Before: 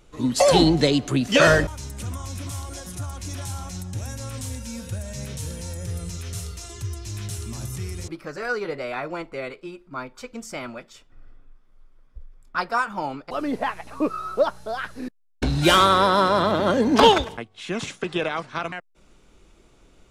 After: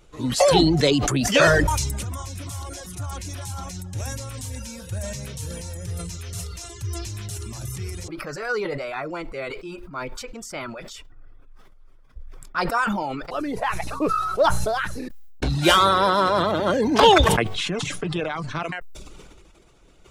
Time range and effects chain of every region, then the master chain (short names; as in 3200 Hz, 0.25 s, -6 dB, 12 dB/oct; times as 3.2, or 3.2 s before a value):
17.55–18.63 low shelf 410 Hz +10 dB + comb 6.8 ms, depth 39% + compressor 2.5:1, threshold -24 dBFS
whole clip: bell 240 Hz -6 dB 0.32 oct; reverb removal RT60 0.56 s; sustainer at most 27 dB/s